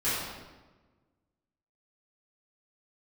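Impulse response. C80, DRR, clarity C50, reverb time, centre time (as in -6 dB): 1.0 dB, -13.0 dB, -1.5 dB, 1.3 s, 93 ms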